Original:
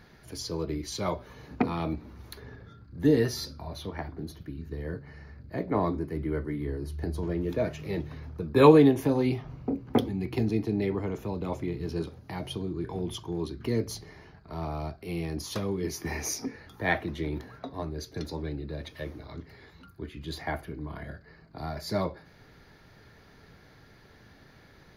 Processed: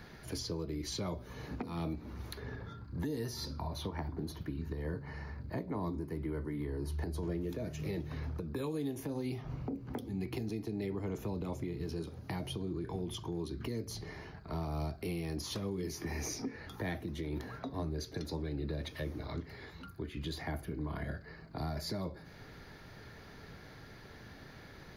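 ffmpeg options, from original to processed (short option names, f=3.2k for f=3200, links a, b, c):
-filter_complex "[0:a]asettb=1/sr,asplit=3[a][b][c];[a]atrim=end=2.594[d];[b]atrim=start=2.59:end=7.09,asetpts=PTS-STARTPTS,afade=t=in:d=0.004:c=qsin,afade=t=out:st=4.496:d=0.004:c=qsin,equalizer=f=950:t=o:w=0.41:g=8[e];[c]atrim=start=7.086[f];[d][e]acrossfade=d=0.004:c1=hsin:c2=qsin[g];[g][f]acrossfade=d=0.004:c1=qsin:c2=hsin,asplit=3[h][i][j];[h]atrim=end=14.612[k];[i]atrim=start=14.608:end=16.422,asetpts=PTS-STARTPTS,volume=3.5dB[l];[j]atrim=start=16.418[m];[k][l]acrossfade=d=0.004:c1=hsin:c2=hsin[n];[n][m]acrossfade=d=0.004:c1=hsin:c2=hsin,acrossover=split=360|5200[o][p][q];[o]acompressor=threshold=-36dB:ratio=4[r];[p]acompressor=threshold=-44dB:ratio=4[s];[q]acompressor=threshold=-51dB:ratio=4[t];[r][s][t]amix=inputs=3:normalize=0,alimiter=level_in=7dB:limit=-24dB:level=0:latency=1:release=235,volume=-7dB,volume=3dB"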